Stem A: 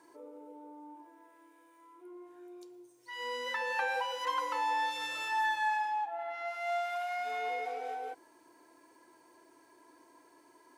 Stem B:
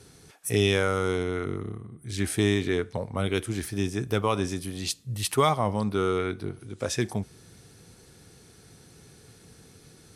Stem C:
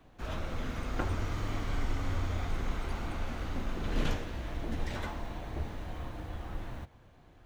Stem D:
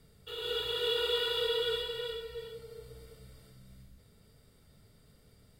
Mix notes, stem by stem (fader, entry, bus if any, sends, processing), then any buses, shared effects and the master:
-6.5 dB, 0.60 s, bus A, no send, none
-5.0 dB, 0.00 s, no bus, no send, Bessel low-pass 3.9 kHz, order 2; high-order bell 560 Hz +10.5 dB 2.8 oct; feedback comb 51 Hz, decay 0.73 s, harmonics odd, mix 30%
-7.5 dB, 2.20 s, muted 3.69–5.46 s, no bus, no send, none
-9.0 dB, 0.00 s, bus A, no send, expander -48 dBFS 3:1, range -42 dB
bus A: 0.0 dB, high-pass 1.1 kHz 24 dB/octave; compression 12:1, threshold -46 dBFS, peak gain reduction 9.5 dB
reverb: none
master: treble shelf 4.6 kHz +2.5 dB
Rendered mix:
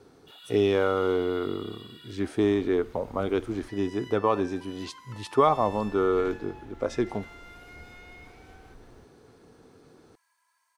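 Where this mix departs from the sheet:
stem C -7.5 dB -> -14.0 dB; stem D: missing expander -48 dBFS 3:1, range -42 dB

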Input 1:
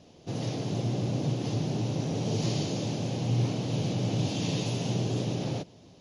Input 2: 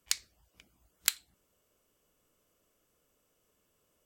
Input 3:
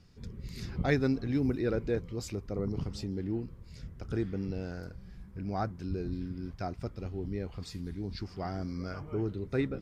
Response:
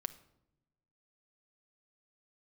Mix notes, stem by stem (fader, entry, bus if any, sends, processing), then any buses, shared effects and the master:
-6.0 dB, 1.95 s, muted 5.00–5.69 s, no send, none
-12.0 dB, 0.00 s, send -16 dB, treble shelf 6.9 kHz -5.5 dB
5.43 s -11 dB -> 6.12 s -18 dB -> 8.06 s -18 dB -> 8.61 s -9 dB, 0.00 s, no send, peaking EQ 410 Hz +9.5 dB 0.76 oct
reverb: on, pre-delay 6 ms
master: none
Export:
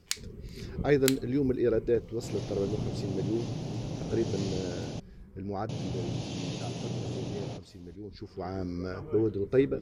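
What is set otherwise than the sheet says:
stem 2 -12.0 dB -> -0.5 dB; stem 3 -11.0 dB -> -2.0 dB

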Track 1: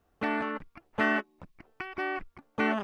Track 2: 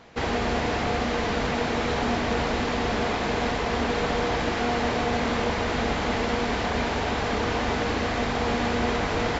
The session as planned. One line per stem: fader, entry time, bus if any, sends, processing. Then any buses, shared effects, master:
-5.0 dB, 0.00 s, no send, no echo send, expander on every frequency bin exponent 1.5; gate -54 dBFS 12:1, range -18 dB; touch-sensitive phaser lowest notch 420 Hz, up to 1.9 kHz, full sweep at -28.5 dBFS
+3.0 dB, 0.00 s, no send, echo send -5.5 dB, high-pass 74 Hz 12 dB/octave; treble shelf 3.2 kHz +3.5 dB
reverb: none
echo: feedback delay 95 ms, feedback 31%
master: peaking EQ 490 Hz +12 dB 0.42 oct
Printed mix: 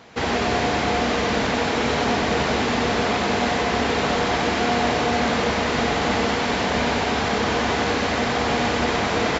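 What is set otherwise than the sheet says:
stem 1: missing expander on every frequency bin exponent 1.5; master: missing peaking EQ 490 Hz +12 dB 0.42 oct

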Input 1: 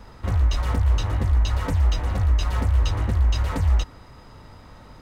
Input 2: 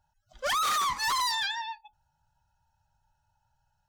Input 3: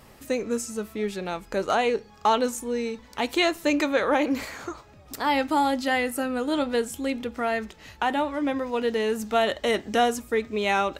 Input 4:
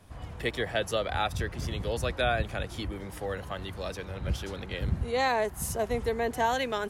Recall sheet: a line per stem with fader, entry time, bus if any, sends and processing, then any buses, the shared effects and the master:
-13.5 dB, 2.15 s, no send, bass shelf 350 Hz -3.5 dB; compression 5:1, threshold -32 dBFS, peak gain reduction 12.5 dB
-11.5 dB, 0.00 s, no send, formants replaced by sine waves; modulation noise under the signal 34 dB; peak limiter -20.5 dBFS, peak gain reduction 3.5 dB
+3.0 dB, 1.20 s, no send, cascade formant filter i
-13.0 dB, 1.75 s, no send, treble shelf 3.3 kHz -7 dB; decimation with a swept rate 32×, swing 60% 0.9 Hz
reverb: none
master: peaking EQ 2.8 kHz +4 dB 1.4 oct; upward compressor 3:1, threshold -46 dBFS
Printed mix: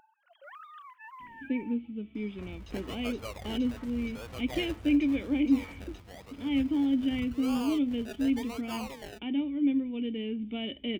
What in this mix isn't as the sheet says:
stem 2 -11.5 dB -> -21.5 dB; stem 4: entry 1.75 s -> 2.30 s

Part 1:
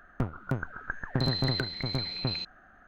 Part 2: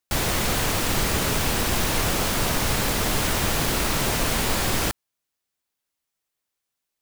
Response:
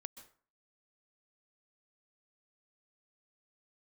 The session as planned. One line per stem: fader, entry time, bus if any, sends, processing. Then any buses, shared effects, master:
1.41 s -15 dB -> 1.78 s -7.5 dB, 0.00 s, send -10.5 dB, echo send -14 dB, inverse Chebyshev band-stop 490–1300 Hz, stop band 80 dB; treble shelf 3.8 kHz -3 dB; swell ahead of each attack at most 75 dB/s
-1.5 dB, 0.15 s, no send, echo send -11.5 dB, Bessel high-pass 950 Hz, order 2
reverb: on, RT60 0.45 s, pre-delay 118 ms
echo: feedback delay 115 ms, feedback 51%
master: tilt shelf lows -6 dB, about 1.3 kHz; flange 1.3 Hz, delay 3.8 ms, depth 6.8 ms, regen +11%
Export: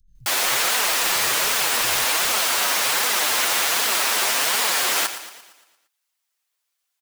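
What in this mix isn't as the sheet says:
stem 2 -1.5 dB -> +9.0 dB; master: missing tilt shelf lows -6 dB, about 1.3 kHz

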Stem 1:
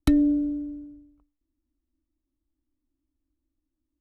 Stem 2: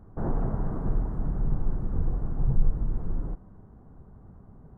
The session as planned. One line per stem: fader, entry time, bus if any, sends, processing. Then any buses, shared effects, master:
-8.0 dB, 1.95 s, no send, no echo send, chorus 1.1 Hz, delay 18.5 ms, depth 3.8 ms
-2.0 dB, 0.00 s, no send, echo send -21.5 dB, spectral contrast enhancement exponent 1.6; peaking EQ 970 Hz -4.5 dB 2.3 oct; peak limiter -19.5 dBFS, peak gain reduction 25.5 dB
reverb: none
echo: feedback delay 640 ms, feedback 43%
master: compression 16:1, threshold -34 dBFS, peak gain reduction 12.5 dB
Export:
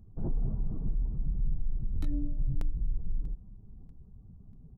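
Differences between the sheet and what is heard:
stem 1 -8.0 dB -> -16.5 dB; master: missing compression 16:1, threshold -34 dBFS, peak gain reduction 12.5 dB

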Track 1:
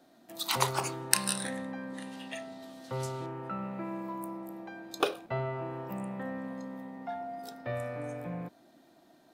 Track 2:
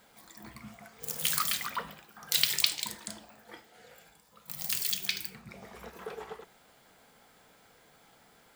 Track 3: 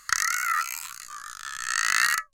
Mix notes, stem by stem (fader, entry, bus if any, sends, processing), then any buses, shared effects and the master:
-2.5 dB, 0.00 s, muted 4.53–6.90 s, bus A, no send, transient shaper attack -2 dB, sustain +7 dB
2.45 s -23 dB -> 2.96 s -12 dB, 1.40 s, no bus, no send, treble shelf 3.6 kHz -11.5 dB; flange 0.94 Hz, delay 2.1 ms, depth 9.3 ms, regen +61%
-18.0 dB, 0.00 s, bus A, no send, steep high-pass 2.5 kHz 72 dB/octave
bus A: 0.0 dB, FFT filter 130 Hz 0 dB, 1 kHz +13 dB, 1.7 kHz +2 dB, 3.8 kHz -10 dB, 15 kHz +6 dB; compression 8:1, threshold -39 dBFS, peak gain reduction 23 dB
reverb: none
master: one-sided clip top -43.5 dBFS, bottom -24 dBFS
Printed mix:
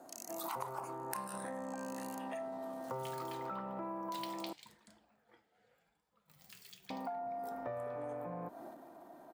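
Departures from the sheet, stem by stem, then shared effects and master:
stem 2: entry 1.40 s -> 1.80 s; master: missing one-sided clip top -43.5 dBFS, bottom -24 dBFS

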